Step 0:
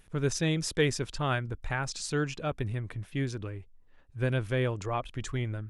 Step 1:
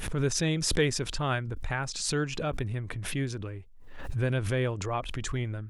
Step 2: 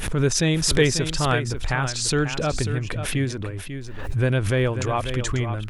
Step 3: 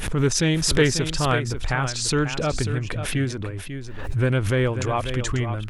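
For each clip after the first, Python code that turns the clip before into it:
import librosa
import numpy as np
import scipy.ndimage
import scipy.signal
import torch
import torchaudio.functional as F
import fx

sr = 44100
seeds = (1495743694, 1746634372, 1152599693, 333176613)

y1 = fx.pre_swell(x, sr, db_per_s=49.0)
y2 = y1 + 10.0 ** (-9.5 / 20.0) * np.pad(y1, (int(542 * sr / 1000.0), 0))[:len(y1)]
y2 = y2 * 10.0 ** (7.0 / 20.0)
y3 = fx.doppler_dist(y2, sr, depth_ms=0.14)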